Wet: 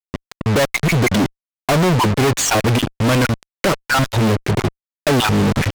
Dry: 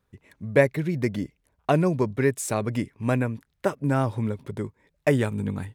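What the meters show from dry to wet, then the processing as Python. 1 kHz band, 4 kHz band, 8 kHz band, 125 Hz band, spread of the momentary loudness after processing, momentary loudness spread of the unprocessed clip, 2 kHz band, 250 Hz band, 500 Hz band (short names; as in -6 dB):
+11.5 dB, +22.0 dB, +14.5 dB, +9.0 dB, 8 LU, 13 LU, +11.5 dB, +8.0 dB, +5.5 dB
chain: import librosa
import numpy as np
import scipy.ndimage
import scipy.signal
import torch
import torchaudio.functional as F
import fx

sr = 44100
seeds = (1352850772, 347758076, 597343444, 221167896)

y = fx.spec_dropout(x, sr, seeds[0], share_pct=32)
y = fx.peak_eq(y, sr, hz=6400.0, db=14.0, octaves=2.4)
y = fx.leveller(y, sr, passes=3)
y = fx.air_absorb(y, sr, metres=280.0)
y = fx.fuzz(y, sr, gain_db=39.0, gate_db=-38.0)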